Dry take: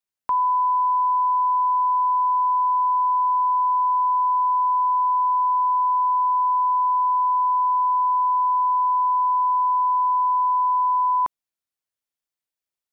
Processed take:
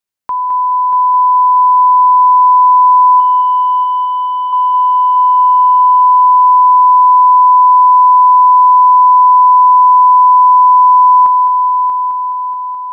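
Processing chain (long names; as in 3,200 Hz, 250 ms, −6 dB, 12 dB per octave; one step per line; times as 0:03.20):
0:03.20–0:04.53: linear delta modulator 16 kbit/s, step −39.5 dBFS
echo machine with several playback heads 212 ms, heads first and third, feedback 63%, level −8 dB
level +4.5 dB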